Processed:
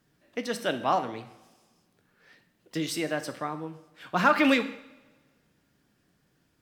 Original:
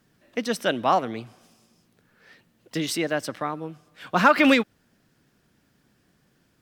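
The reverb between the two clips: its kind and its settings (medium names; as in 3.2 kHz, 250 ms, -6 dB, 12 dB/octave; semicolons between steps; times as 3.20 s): two-slope reverb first 0.64 s, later 1.6 s, from -17 dB, DRR 8 dB; trim -5 dB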